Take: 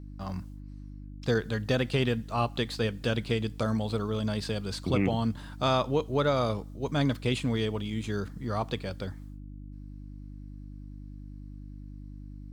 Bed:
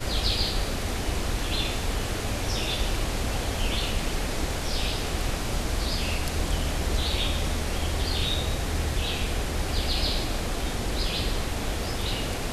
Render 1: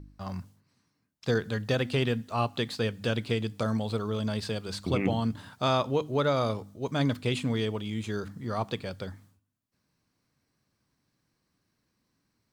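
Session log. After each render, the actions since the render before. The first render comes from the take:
hum removal 50 Hz, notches 6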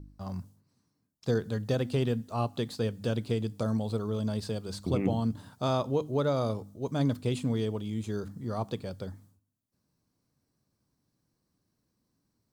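parametric band 2,200 Hz −10.5 dB 2 octaves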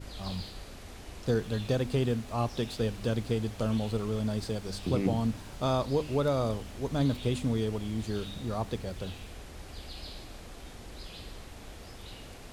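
mix in bed −17 dB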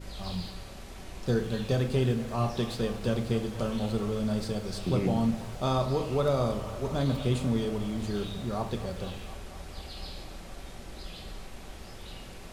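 delay with a band-pass on its return 239 ms, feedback 81%, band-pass 1,100 Hz, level −13 dB
rectangular room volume 460 cubic metres, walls furnished, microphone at 1.1 metres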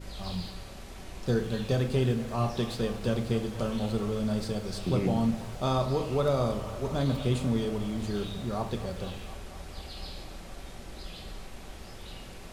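no processing that can be heard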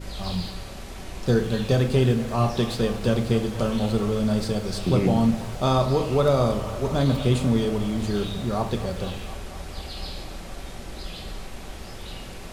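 level +6.5 dB

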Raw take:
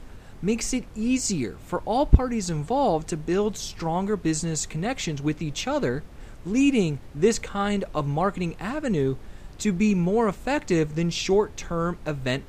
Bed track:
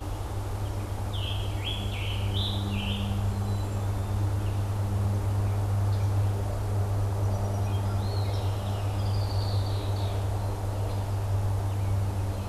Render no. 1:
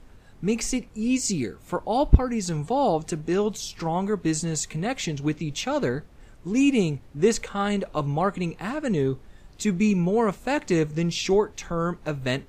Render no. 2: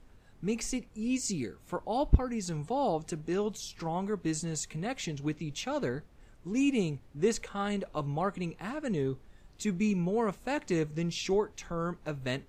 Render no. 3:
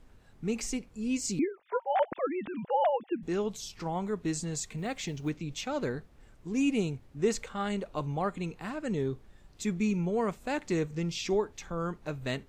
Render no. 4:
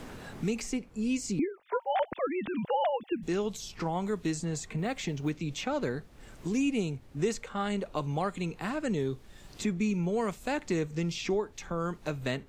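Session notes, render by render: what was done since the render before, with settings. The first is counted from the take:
noise reduction from a noise print 7 dB
level −7.5 dB
0:01.39–0:03.23: three sine waves on the formant tracks; 0:04.78–0:05.30: log-companded quantiser 8 bits
multiband upward and downward compressor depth 70%

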